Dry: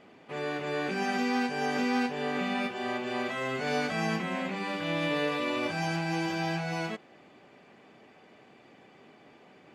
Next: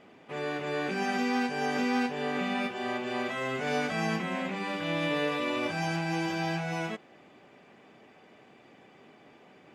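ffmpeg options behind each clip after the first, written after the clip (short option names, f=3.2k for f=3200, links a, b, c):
-af "bandreject=f=4.4k:w=16"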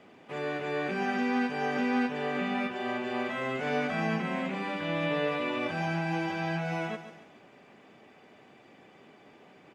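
-filter_complex "[0:a]aecho=1:1:141|282|423|564:0.251|0.098|0.0382|0.0149,acrossover=split=150|3400[a][b][c];[c]acompressor=threshold=-56dB:ratio=6[d];[a][b][d]amix=inputs=3:normalize=0"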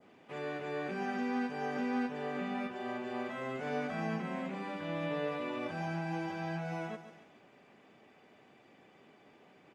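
-af "adynamicequalizer=threshold=0.00316:dfrequency=2700:dqfactor=0.97:tfrequency=2700:tqfactor=0.97:attack=5:release=100:ratio=0.375:range=2.5:mode=cutabove:tftype=bell,volume=-5.5dB"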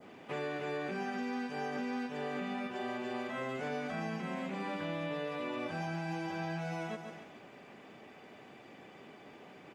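-filter_complex "[0:a]acrossover=split=2700[a][b];[a]acompressor=threshold=-43dB:ratio=6[c];[b]alimiter=level_in=29.5dB:limit=-24dB:level=0:latency=1:release=100,volume=-29.5dB[d];[c][d]amix=inputs=2:normalize=0,volume=7.5dB"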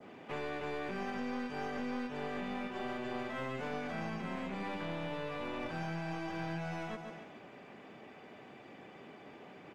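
-filter_complex "[0:a]highshelf=f=5.6k:g=-8.5,acrossover=split=140|2300[a][b][c];[b]aeval=exprs='clip(val(0),-1,0.00562)':c=same[d];[a][d][c]amix=inputs=3:normalize=0,volume=1dB"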